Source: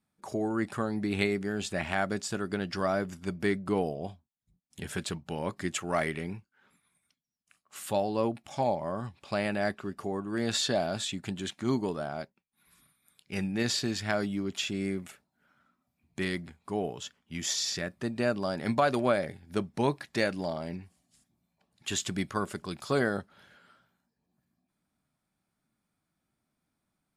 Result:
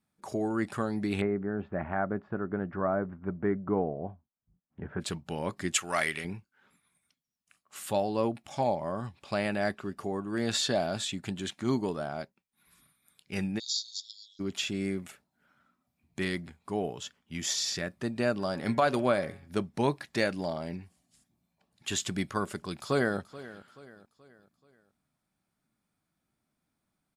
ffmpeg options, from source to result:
-filter_complex "[0:a]asplit=3[a][b][c];[a]afade=t=out:st=1.2:d=0.02[d];[b]lowpass=f=1.5k:w=0.5412,lowpass=f=1.5k:w=1.3066,afade=t=in:st=1.2:d=0.02,afade=t=out:st=5:d=0.02[e];[c]afade=t=in:st=5:d=0.02[f];[d][e][f]amix=inputs=3:normalize=0,asettb=1/sr,asplit=3[g][h][i];[g]atrim=end=5.734[j];[h]atrim=start=5.73:end=6.25,asetpts=PTS-STARTPTS,afade=t=in:d=0.004:c=qsin,afade=t=out:st=0.516:d=0.004:c=qsin,tiltshelf=f=970:g=-7.5[k];[i]atrim=start=6.246[l];[j][k]acrossfade=d=0.004:c1=hsin:c2=qsin[m];[m][l]acrossfade=d=0.004:c1=qsin:c2=hsin,asplit=3[n][o][p];[n]afade=t=out:st=13.58:d=0.02[q];[o]asuperpass=centerf=5000:order=20:qfactor=1.3,afade=t=in:st=13.58:d=0.02,afade=t=out:st=14.39:d=0.02[r];[p]afade=t=in:st=14.39:d=0.02[s];[q][r][s]amix=inputs=3:normalize=0,asplit=3[t][u][v];[t]afade=t=out:st=18.38:d=0.02[w];[u]bandreject=f=138.9:t=h:w=4,bandreject=f=277.8:t=h:w=4,bandreject=f=416.7:t=h:w=4,bandreject=f=555.6:t=h:w=4,bandreject=f=694.5:t=h:w=4,bandreject=f=833.4:t=h:w=4,bandreject=f=972.3:t=h:w=4,bandreject=f=1.1112k:t=h:w=4,bandreject=f=1.2501k:t=h:w=4,bandreject=f=1.389k:t=h:w=4,bandreject=f=1.5279k:t=h:w=4,bandreject=f=1.6668k:t=h:w=4,bandreject=f=1.8057k:t=h:w=4,bandreject=f=1.9446k:t=h:w=4,bandreject=f=2.0835k:t=h:w=4,bandreject=f=2.2224k:t=h:w=4,bandreject=f=2.3613k:t=h:w=4,bandreject=f=2.5002k:t=h:w=4,bandreject=f=2.6391k:t=h:w=4,bandreject=f=2.778k:t=h:w=4,bandreject=f=2.9169k:t=h:w=4,bandreject=f=3.0558k:t=h:w=4,bandreject=f=3.1947k:t=h:w=4,bandreject=f=3.3336k:t=h:w=4,afade=t=in:st=18.38:d=0.02,afade=t=out:st=19.47:d=0.02[x];[v]afade=t=in:st=19.47:d=0.02[y];[w][x][y]amix=inputs=3:normalize=0,asplit=2[z][aa];[aa]afade=t=in:st=22.66:d=0.01,afade=t=out:st=23.19:d=0.01,aecho=0:1:430|860|1290|1720:0.133352|0.0600085|0.0270038|0.0121517[ab];[z][ab]amix=inputs=2:normalize=0"

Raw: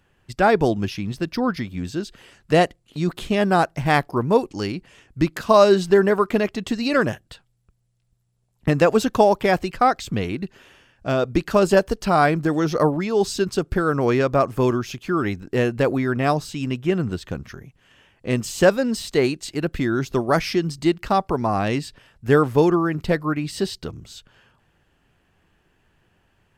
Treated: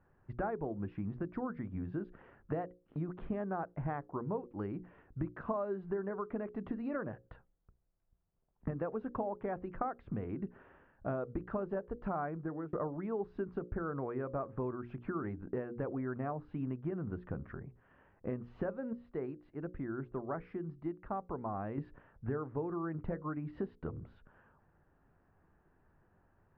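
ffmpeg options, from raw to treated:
-filter_complex "[0:a]asplit=4[a][b][c][d];[a]atrim=end=12.73,asetpts=PTS-STARTPTS,afade=t=out:st=12.27:d=0.46[e];[b]atrim=start=12.73:end=18.932,asetpts=PTS-STARTPTS,afade=t=in:d=0.004:c=hsin[f];[c]atrim=start=18.928:end=21.782,asetpts=PTS-STARTPTS,volume=-10.5dB[g];[d]atrim=start=21.778[h];[e][f]concat=n=2:v=0:a=1[i];[i][g]acrossfade=d=0.004:c1=hsin:c2=hsin[j];[j][h]acrossfade=d=0.004:c1=hsin:c2=hsin,acompressor=threshold=-28dB:ratio=12,lowpass=f=1.5k:w=0.5412,lowpass=f=1.5k:w=1.3066,bandreject=f=60:t=h:w=6,bandreject=f=120:t=h:w=6,bandreject=f=180:t=h:w=6,bandreject=f=240:t=h:w=6,bandreject=f=300:t=h:w=6,bandreject=f=360:t=h:w=6,bandreject=f=420:t=h:w=6,bandreject=f=480:t=h:w=6,bandreject=f=540:t=h:w=6,volume=-5dB"

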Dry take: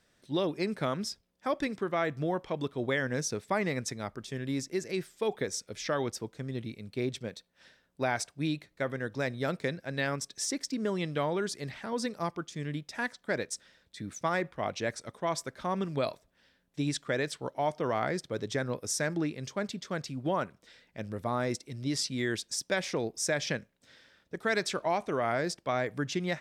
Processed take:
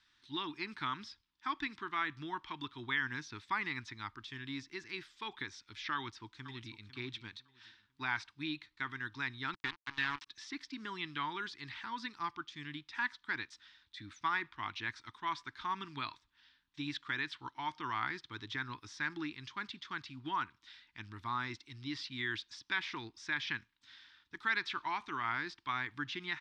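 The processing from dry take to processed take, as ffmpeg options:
-filter_complex "[0:a]asplit=2[a][b];[b]afade=t=in:st=5.95:d=0.01,afade=t=out:st=6.86:d=0.01,aecho=0:1:500|1000|1500:0.223872|0.0671616|0.0201485[c];[a][c]amix=inputs=2:normalize=0,asplit=3[d][e][f];[d]afade=t=out:st=9.53:d=0.02[g];[e]acrusher=bits=4:mix=0:aa=0.5,afade=t=in:st=9.53:d=0.02,afade=t=out:st=10.26:d=0.02[h];[f]afade=t=in:st=10.26:d=0.02[i];[g][h][i]amix=inputs=3:normalize=0,acrossover=split=3400[j][k];[k]acompressor=threshold=-54dB:ratio=4:attack=1:release=60[l];[j][l]amix=inputs=2:normalize=0,firequalizer=gain_entry='entry(110,0);entry(170,-10);entry(310,1);entry(540,-29);entry(920,8);entry(2200,8);entry(3600,13);entry(8300,-6);entry(12000,-13)':delay=0.05:min_phase=1,volume=-8.5dB"

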